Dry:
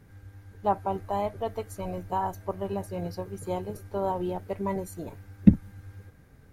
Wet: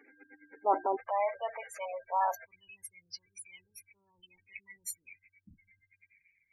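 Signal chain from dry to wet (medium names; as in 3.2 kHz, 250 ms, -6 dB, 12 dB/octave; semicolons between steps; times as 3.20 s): peaking EQ 2.3 kHz +11 dB 1 oct; band-stop 3.7 kHz, Q 8; transient shaper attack -4 dB, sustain +8 dB; de-hum 355.9 Hz, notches 3; spectral gate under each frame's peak -20 dB strong; elliptic high-pass 270 Hz, stop band 40 dB, from 0.95 s 540 Hz, from 2.44 s 2.3 kHz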